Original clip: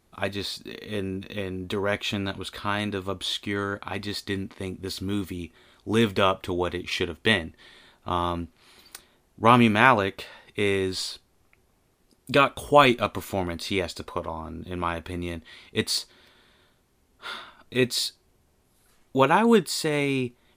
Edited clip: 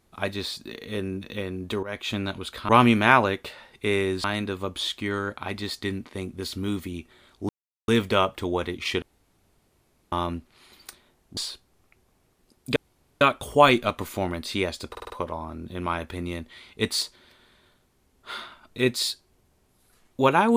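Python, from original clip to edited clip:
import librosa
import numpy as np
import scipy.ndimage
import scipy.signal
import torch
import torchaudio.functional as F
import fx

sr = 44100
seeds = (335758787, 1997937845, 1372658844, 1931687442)

y = fx.edit(x, sr, fx.fade_in_from(start_s=1.83, length_s=0.32, floor_db=-14.0),
    fx.insert_silence(at_s=5.94, length_s=0.39),
    fx.room_tone_fill(start_s=7.08, length_s=1.1),
    fx.move(start_s=9.43, length_s=1.55, to_s=2.69),
    fx.insert_room_tone(at_s=12.37, length_s=0.45),
    fx.stutter(start_s=14.06, slice_s=0.05, count=5), tone=tone)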